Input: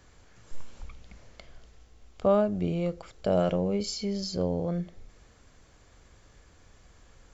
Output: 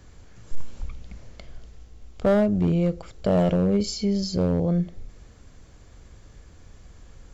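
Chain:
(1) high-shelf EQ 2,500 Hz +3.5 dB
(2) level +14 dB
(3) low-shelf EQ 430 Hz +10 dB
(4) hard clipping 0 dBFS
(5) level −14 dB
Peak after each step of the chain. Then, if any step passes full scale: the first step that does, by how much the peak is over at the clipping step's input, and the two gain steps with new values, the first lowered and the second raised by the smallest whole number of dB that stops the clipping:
−12.0, +2.0, +7.0, 0.0, −14.0 dBFS
step 2, 7.0 dB
step 2 +7 dB, step 5 −7 dB

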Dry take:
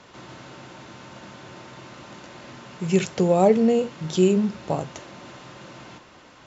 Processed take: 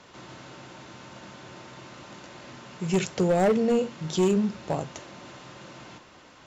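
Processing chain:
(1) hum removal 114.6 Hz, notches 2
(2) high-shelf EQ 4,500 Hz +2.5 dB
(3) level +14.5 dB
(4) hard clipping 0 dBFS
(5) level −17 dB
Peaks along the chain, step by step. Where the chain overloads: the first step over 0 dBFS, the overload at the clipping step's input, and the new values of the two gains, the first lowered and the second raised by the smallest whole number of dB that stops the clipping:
−5.5, −5.5, +9.0, 0.0, −17.0 dBFS
step 3, 9.0 dB
step 3 +5.5 dB, step 5 −8 dB

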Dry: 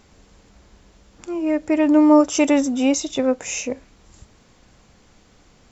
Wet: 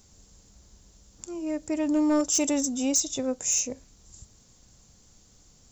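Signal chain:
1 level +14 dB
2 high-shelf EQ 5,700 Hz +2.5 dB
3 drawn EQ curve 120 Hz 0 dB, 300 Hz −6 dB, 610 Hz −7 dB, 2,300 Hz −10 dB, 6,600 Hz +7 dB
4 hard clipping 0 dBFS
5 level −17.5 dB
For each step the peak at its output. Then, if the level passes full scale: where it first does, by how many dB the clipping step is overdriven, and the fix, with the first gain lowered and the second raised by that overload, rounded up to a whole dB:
+10.5, +10.5, +9.5, 0.0, −17.5 dBFS
step 1, 9.5 dB
step 1 +4 dB, step 5 −7.5 dB

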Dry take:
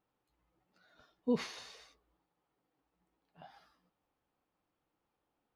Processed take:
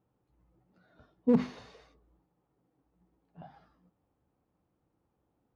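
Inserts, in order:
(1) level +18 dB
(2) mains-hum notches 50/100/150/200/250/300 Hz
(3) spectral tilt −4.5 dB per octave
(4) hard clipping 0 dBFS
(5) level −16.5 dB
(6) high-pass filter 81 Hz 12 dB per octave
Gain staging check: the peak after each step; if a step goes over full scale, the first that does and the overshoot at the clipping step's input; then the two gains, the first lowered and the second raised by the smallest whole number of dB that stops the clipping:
−3.0, −2.5, +5.0, 0.0, −16.5, −13.5 dBFS
step 3, 5.0 dB
step 1 +13 dB, step 5 −11.5 dB

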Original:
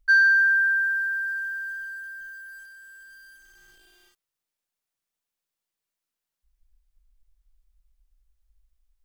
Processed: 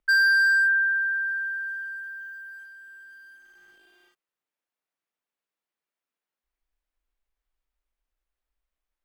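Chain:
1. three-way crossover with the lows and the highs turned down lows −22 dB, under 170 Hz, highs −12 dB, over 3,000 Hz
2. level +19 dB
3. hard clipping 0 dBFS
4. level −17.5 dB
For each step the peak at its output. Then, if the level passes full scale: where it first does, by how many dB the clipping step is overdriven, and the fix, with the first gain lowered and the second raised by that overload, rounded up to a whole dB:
−12.5, +6.5, 0.0, −17.5 dBFS
step 2, 6.5 dB
step 2 +12 dB, step 4 −10.5 dB

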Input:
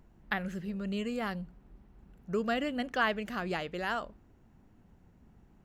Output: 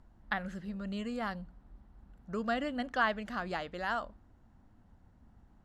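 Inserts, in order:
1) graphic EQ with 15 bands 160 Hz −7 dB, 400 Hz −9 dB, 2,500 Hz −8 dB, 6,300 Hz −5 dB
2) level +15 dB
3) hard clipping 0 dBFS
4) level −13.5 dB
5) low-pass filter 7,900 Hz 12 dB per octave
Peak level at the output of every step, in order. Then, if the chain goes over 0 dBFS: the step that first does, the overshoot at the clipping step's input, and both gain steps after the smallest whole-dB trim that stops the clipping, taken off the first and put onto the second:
−17.5, −2.5, −2.5, −16.0, −16.0 dBFS
no step passes full scale

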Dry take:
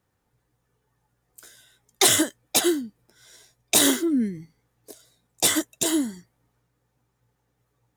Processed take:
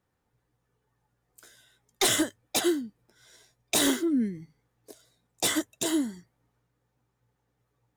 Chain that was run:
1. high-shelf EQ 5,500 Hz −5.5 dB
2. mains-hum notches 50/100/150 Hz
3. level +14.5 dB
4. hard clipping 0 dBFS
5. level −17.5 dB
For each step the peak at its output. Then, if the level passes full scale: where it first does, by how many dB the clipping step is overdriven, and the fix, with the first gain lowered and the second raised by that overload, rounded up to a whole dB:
−8.0, −8.0, +6.5, 0.0, −17.5 dBFS
step 3, 6.5 dB
step 3 +7.5 dB, step 5 −10.5 dB

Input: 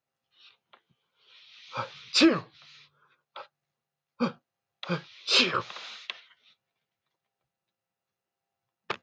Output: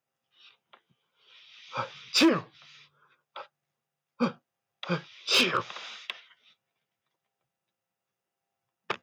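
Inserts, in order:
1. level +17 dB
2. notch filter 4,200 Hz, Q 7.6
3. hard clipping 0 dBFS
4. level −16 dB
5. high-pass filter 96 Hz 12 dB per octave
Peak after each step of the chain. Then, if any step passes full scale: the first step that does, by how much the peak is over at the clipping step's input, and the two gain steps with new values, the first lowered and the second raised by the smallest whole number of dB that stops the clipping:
+7.5, +6.5, 0.0, −16.0, −13.0 dBFS
step 1, 6.5 dB
step 1 +10 dB, step 4 −9 dB

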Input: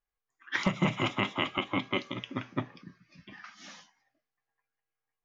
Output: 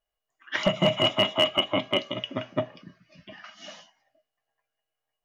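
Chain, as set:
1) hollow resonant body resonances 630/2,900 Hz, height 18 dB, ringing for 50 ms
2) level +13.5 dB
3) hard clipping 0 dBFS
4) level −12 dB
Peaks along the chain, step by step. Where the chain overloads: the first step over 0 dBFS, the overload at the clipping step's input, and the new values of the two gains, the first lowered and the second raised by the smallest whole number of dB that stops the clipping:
−7.5, +6.0, 0.0, −12.0 dBFS
step 2, 6.0 dB
step 2 +7.5 dB, step 4 −6 dB

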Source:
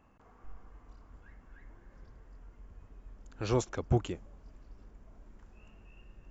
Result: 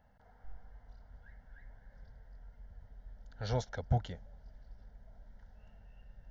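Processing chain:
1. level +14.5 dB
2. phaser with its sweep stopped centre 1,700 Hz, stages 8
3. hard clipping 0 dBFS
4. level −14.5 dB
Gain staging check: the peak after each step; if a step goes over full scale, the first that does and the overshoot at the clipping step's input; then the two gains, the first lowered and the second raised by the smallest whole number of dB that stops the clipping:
−1.0, −4.0, −4.0, −18.5 dBFS
no step passes full scale

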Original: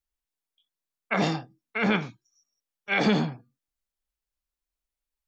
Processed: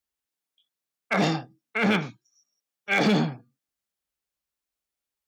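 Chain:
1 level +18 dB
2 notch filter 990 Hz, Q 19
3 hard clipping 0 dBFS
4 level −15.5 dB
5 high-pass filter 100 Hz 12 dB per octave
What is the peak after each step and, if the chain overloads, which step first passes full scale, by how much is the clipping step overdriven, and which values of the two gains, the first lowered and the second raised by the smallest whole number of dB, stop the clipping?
+7.0, +7.0, 0.0, −15.5, −11.5 dBFS
step 1, 7.0 dB
step 1 +11 dB, step 4 −8.5 dB

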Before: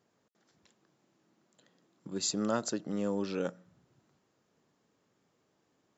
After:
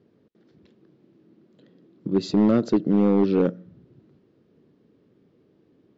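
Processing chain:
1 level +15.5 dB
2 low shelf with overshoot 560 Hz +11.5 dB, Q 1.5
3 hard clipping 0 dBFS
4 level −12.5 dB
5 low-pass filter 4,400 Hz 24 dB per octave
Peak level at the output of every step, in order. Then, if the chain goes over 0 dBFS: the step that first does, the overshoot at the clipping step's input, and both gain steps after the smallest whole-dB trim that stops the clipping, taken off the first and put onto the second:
−1.5, +6.0, 0.0, −12.5, −12.0 dBFS
step 2, 6.0 dB
step 1 +9.5 dB, step 4 −6.5 dB

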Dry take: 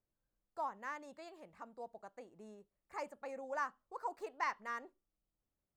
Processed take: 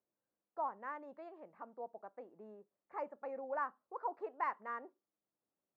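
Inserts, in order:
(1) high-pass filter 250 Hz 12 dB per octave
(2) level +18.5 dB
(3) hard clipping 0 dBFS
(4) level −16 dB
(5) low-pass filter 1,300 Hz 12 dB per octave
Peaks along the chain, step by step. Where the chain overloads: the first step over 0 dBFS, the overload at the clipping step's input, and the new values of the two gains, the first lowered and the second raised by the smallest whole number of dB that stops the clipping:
−23.5, −5.0, −5.0, −21.0, −24.5 dBFS
no step passes full scale

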